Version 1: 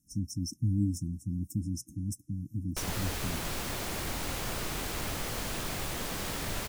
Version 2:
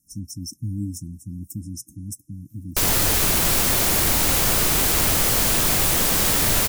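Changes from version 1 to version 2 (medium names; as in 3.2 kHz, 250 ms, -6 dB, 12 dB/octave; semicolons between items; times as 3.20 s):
background +12.0 dB; master: add treble shelf 6.5 kHz +11 dB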